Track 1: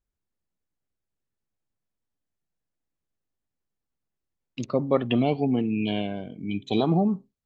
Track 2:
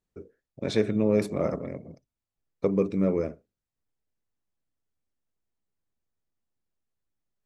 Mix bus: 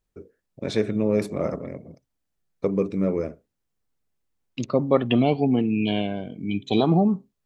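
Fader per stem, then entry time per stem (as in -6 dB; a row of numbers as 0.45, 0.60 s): +3.0, +1.0 dB; 0.00, 0.00 s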